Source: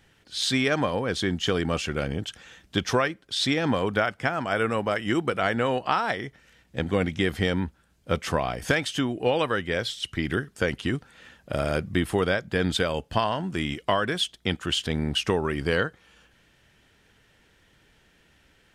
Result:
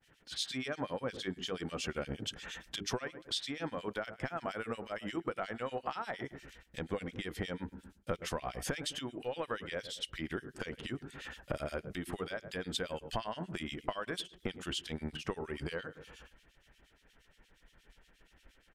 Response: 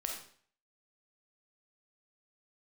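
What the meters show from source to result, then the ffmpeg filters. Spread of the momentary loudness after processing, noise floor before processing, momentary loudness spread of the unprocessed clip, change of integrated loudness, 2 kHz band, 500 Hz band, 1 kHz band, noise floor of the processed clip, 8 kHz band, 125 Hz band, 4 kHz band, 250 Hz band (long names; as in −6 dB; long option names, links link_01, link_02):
6 LU, −62 dBFS, 6 LU, −13.5 dB, −14.0 dB, −13.0 dB, −13.5 dB, −69 dBFS, −8.5 dB, −14.5 dB, −11.5 dB, −13.5 dB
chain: -filter_complex "[0:a]bandreject=frequency=50:width_type=h:width=6,bandreject=frequency=100:width_type=h:width=6,bandreject=frequency=150:width_type=h:width=6,bandreject=frequency=200:width_type=h:width=6,bandreject=frequency=250:width_type=h:width=6,bandreject=frequency=300:width_type=h:width=6,bandreject=frequency=350:width_type=h:width=6,bandreject=frequency=400:width_type=h:width=6,bandreject=frequency=450:width_type=h:width=6,agate=range=-33dB:threshold=-53dB:ratio=3:detection=peak,equalizer=frequency=86:width=2.6:gain=-7,asplit=2[link_01][link_02];[link_02]adelay=105,lowpass=frequency=990:poles=1,volume=-15.5dB,asplit=2[link_03][link_04];[link_04]adelay=105,lowpass=frequency=990:poles=1,volume=0.28,asplit=2[link_05][link_06];[link_06]adelay=105,lowpass=frequency=990:poles=1,volume=0.28[link_07];[link_01][link_03][link_05][link_07]amix=inputs=4:normalize=0,acontrast=85,alimiter=limit=-10.5dB:level=0:latency=1:release=419,acompressor=threshold=-32dB:ratio=12,acrossover=split=2100[link_08][link_09];[link_08]aeval=exprs='val(0)*(1-1/2+1/2*cos(2*PI*8.5*n/s))':channel_layout=same[link_10];[link_09]aeval=exprs='val(0)*(1-1/2-1/2*cos(2*PI*8.5*n/s))':channel_layout=same[link_11];[link_10][link_11]amix=inputs=2:normalize=0,asubboost=boost=3.5:cutoff=56,volume=1.5dB"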